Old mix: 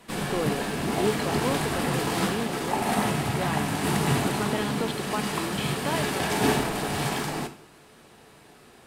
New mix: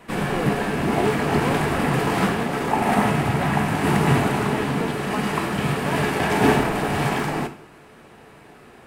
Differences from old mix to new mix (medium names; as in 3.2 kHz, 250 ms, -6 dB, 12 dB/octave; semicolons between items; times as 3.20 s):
background +6.0 dB; master: add high-order bell 6.9 kHz -8.5 dB 2.4 oct